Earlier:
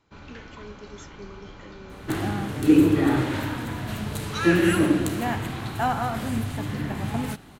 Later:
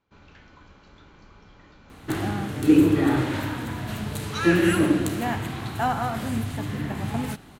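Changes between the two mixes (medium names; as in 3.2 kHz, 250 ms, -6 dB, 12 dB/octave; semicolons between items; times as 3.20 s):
speech: muted; first sound -7.5 dB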